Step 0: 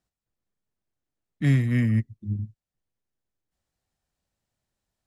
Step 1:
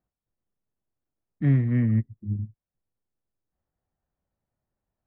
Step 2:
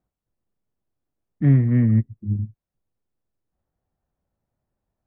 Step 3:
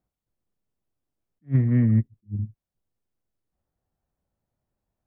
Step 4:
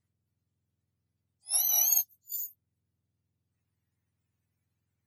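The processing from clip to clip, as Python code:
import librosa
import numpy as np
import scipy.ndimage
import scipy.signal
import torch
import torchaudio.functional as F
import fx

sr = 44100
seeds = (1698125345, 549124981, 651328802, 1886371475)

y1 = scipy.signal.sosfilt(scipy.signal.butter(2, 1300.0, 'lowpass', fs=sr, output='sos'), x)
y2 = fx.high_shelf(y1, sr, hz=2100.0, db=-9.0)
y2 = y2 * 10.0 ** (5.0 / 20.0)
y3 = fx.attack_slew(y2, sr, db_per_s=400.0)
y3 = y3 * 10.0 ** (-2.0 / 20.0)
y4 = fx.octave_mirror(y3, sr, pivot_hz=1200.0)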